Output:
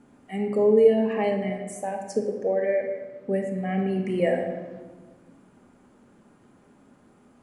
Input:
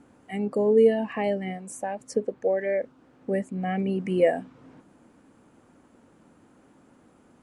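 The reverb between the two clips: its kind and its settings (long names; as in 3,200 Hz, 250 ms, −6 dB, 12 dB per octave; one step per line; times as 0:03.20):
rectangular room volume 950 cubic metres, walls mixed, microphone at 1.3 metres
level −2 dB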